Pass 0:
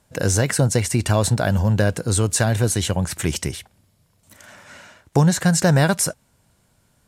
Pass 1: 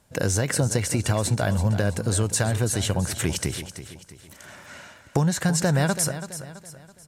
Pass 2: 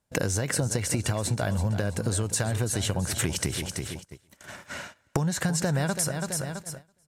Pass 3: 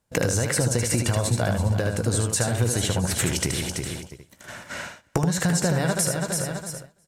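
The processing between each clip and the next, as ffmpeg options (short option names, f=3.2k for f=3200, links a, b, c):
-filter_complex "[0:a]acompressor=threshold=-21dB:ratio=2.5,asplit=2[a][b];[b]aecho=0:1:331|662|993|1324:0.251|0.105|0.0443|0.0186[c];[a][c]amix=inputs=2:normalize=0"
-af "acompressor=threshold=-30dB:ratio=6,agate=range=-22dB:threshold=-43dB:ratio=16:detection=peak,volume=6dB"
-af "equalizer=f=490:t=o:w=0.22:g=2.5,aecho=1:1:17|76:0.237|0.562,volume=2.5dB"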